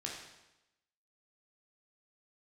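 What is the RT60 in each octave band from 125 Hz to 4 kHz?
0.95 s, 0.95 s, 0.95 s, 0.95 s, 0.90 s, 0.90 s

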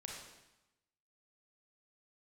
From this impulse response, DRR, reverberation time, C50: -1.5 dB, 0.95 s, 1.0 dB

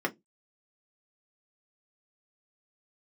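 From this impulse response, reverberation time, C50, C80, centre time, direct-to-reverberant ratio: 0.15 s, 24.0 dB, 34.5 dB, 7 ms, 0.0 dB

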